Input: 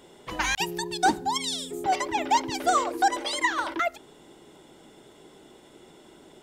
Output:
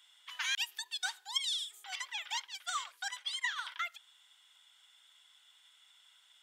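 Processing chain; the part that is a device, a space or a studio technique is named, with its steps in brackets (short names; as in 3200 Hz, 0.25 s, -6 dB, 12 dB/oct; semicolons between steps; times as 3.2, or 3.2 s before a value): 2.32–3.56 expander -25 dBFS; headphones lying on a table (HPF 1300 Hz 24 dB/oct; bell 3300 Hz +9 dB 0.36 oct); gain -8.5 dB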